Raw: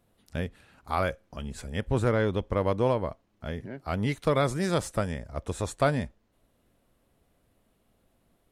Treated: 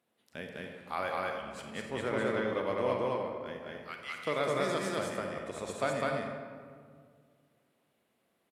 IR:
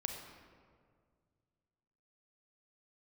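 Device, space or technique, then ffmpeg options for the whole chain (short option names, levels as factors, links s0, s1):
stadium PA: -filter_complex "[0:a]asettb=1/sr,asplit=3[s0][s1][s2];[s0]atrim=end=3.624[s3];[s1]atrim=start=3.62:end=4.17,asetpts=PTS-STARTPTS,afade=t=in:d=0.004:c=qsin,afade=t=out:st=0.546:d=0.004:c=qsin,highpass=f=1100:w=0.5412,highpass=f=1100:w=1.3066[s4];[s2]atrim=start=4.166[s5];[s3][s4]acrossfade=d=0.004:c1=hsin:c2=qsin[s6];[s6][s5]acrossfade=d=0.004:c1=qsin:c2=hsin,highpass=230,equalizer=f=2300:t=o:w=1.5:g=5,aecho=1:1:204.1|285.7:0.891|0.282[s7];[1:a]atrim=start_sample=2205[s8];[s7][s8]afir=irnorm=-1:irlink=0,volume=0.398"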